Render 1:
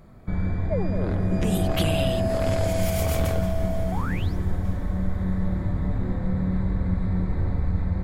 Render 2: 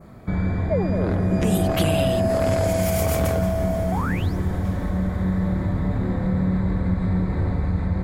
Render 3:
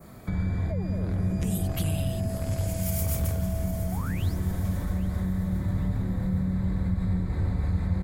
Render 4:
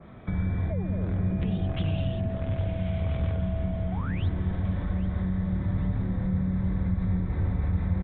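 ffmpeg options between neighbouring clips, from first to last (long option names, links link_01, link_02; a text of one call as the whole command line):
ffmpeg -i in.wav -filter_complex "[0:a]highpass=frequency=89:poles=1,adynamicequalizer=threshold=0.00355:dfrequency=3400:dqfactor=1.3:tfrequency=3400:tqfactor=1.3:attack=5:release=100:ratio=0.375:range=2.5:mode=cutabove:tftype=bell,asplit=2[link_01][link_02];[link_02]alimiter=limit=-24dB:level=0:latency=1:release=152,volume=-2dB[link_03];[link_01][link_03]amix=inputs=2:normalize=0,volume=2dB" out.wav
ffmpeg -i in.wav -filter_complex "[0:a]acrossover=split=180[link_01][link_02];[link_02]acompressor=threshold=-35dB:ratio=6[link_03];[link_01][link_03]amix=inputs=2:normalize=0,aecho=1:1:810|1620|2430|3240:0.188|0.0848|0.0381|0.0172,crystalizer=i=3:c=0,volume=-3dB" out.wav
ffmpeg -i in.wav -af "aresample=8000,aresample=44100" out.wav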